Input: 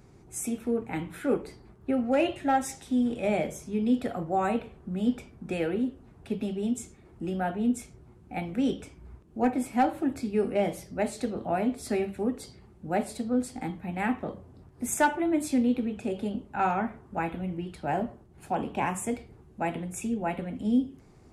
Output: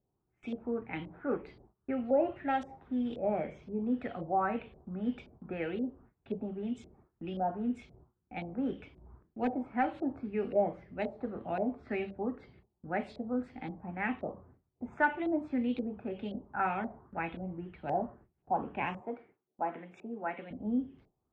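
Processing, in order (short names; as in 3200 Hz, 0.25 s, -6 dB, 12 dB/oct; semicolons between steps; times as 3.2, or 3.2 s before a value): low-pass opened by the level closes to 1500 Hz, open at -22 dBFS; 19.01–20.51 HPF 290 Hz 12 dB/oct; LFO low-pass saw up 1.9 Hz 560–4000 Hz; gate with hold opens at -41 dBFS; gain -7.5 dB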